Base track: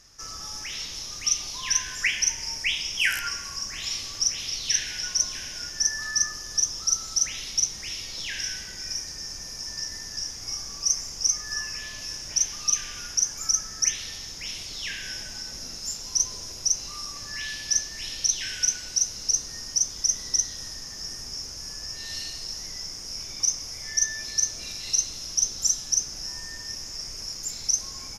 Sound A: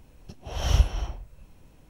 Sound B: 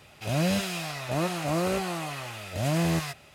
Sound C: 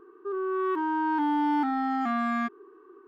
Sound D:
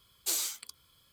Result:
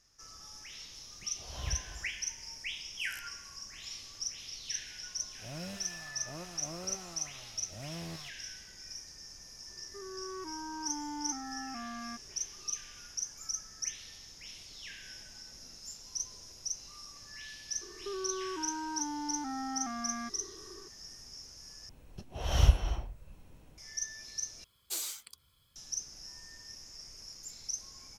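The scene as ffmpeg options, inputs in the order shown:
-filter_complex "[1:a]asplit=2[a][b];[3:a]asplit=2[c][d];[0:a]volume=-13.5dB[e];[a]highpass=44[f];[d]acompressor=threshold=-35dB:ratio=6:attack=3.2:release=140:knee=1:detection=peak[g];[4:a]asubboost=boost=5.5:cutoff=180[h];[e]asplit=3[i][j][k];[i]atrim=end=21.894[l];[b]atrim=end=1.89,asetpts=PTS-STARTPTS,volume=-2.5dB[m];[j]atrim=start=23.776:end=24.644[n];[h]atrim=end=1.12,asetpts=PTS-STARTPTS,volume=-5.5dB[o];[k]atrim=start=25.756[p];[f]atrim=end=1.89,asetpts=PTS-STARTPTS,volume=-15dB,afade=t=in:d=0.004:c=hsin,afade=t=out:st=1.886:d=0.004:c=hsin,adelay=930[q];[2:a]atrim=end=3.34,asetpts=PTS-STARTPTS,volume=-17.5dB,afade=t=in:d=0.004:c=hsin,afade=t=out:st=3.336:d=0.004:c=hsin,adelay=227997S[r];[c]atrim=end=3.07,asetpts=PTS-STARTPTS,volume=-15dB,afade=t=in:d=0.004:c=hsin,afade=t=out:st=3.066:d=0.004:c=hsin,adelay=9690[s];[g]atrim=end=3.07,asetpts=PTS-STARTPTS,volume=-0.5dB,afade=t=in:d=0.004:c=hsin,afade=t=out:st=3.066:d=0.004:c=hsin,adelay=17810[t];[l][m]acrossfade=d=0.004:c1=hsin:c2=hsin[u];[u][n]acrossfade=d=0.004:c1=hsin:c2=hsin[v];[v][o]acrossfade=d=0.004:c1=hsin:c2=hsin[w];[w][p]acrossfade=d=0.004:c1=hsin:c2=hsin[x];[x][q][r][s][t]amix=inputs=5:normalize=0"

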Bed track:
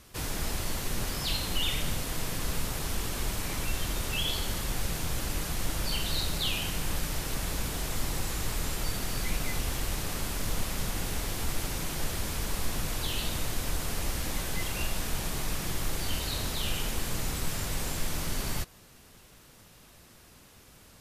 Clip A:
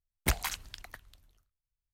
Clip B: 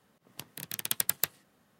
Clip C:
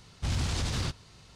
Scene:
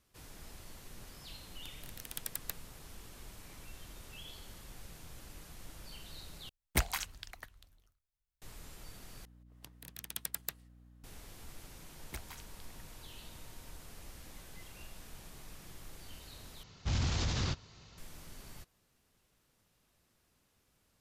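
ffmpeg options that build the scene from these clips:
-filter_complex "[2:a]asplit=2[a][b];[1:a]asplit=2[c][d];[0:a]volume=-19dB[e];[b]aeval=exprs='val(0)+0.00447*(sin(2*PI*60*n/s)+sin(2*PI*2*60*n/s)/2+sin(2*PI*3*60*n/s)/3+sin(2*PI*4*60*n/s)/4+sin(2*PI*5*60*n/s)/5)':c=same[f];[d]aeval=exprs='val(0)+0.00282*sin(2*PI*930*n/s)':c=same[g];[3:a]aresample=16000,aresample=44100[h];[e]asplit=4[i][j][k][l];[i]atrim=end=6.494[m];[c]atrim=end=1.93,asetpts=PTS-STARTPTS,volume=-2dB[n];[j]atrim=start=8.416:end=9.254[o];[f]atrim=end=1.79,asetpts=PTS-STARTPTS,volume=-10.5dB[p];[k]atrim=start=11.036:end=16.634[q];[h]atrim=end=1.35,asetpts=PTS-STARTPTS,volume=-2.5dB[r];[l]atrim=start=17.976[s];[a]atrim=end=1.79,asetpts=PTS-STARTPTS,volume=-12dB,afade=t=in:d=0.004:c=hsin,afade=t=out:st=1.786:d=0.004:c=hsin,adelay=1260[t];[g]atrim=end=1.93,asetpts=PTS-STARTPTS,volume=-17dB,afade=t=in:d=0.004:c=hsin,afade=t=out:st=1.926:d=0.004:c=hsin,adelay=523026S[u];[m][n]acrossfade=d=0.004:c1=hsin:c2=hsin[v];[v][o]acrossfade=d=0.004:c1=hsin:c2=hsin[w];[w][p]acrossfade=d=0.004:c1=hsin:c2=hsin[x];[x][q]acrossfade=d=0.004:c1=hsin:c2=hsin[y];[y][r]acrossfade=d=0.004:c1=hsin:c2=hsin[z];[z][s]acrossfade=d=0.004:c1=hsin:c2=hsin[aa];[aa][t][u]amix=inputs=3:normalize=0"

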